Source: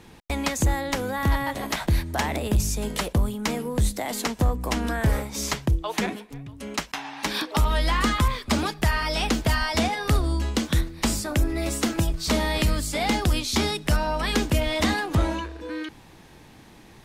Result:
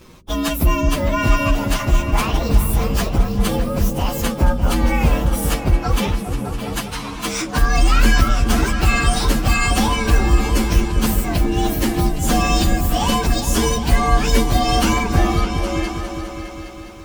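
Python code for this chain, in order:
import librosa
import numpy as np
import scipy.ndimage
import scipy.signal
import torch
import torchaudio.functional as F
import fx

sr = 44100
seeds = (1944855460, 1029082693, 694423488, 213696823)

y = fx.partial_stretch(x, sr, pct=117)
y = fx.echo_opening(y, sr, ms=204, hz=200, octaves=2, feedback_pct=70, wet_db=-3)
y = y * 10.0 ** (8.0 / 20.0)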